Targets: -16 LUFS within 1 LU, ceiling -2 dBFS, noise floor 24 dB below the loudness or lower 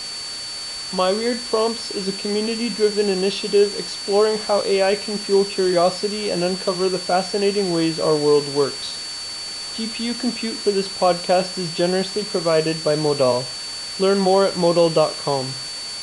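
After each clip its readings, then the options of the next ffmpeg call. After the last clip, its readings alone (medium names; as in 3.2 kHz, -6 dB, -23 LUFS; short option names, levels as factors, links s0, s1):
steady tone 4.5 kHz; tone level -29 dBFS; noise floor -31 dBFS; noise floor target -45 dBFS; loudness -20.5 LUFS; peak level -5.0 dBFS; loudness target -16.0 LUFS
-> -af "bandreject=f=4500:w=30"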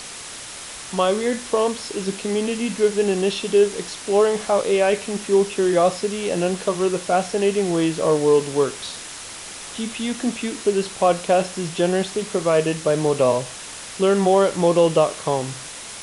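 steady tone not found; noise floor -36 dBFS; noise floor target -45 dBFS
-> -af "afftdn=nr=9:nf=-36"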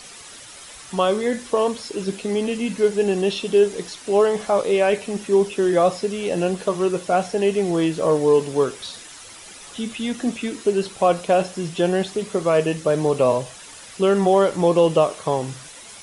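noise floor -41 dBFS; noise floor target -45 dBFS
-> -af "afftdn=nr=6:nf=-41"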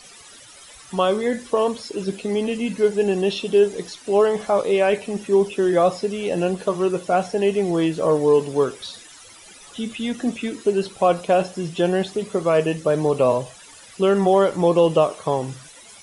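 noise floor -45 dBFS; loudness -21.0 LUFS; peak level -5.5 dBFS; loudness target -16.0 LUFS
-> -af "volume=1.78,alimiter=limit=0.794:level=0:latency=1"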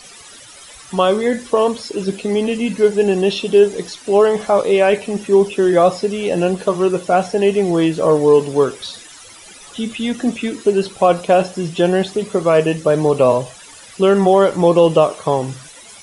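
loudness -16.0 LUFS; peak level -2.0 dBFS; noise floor -40 dBFS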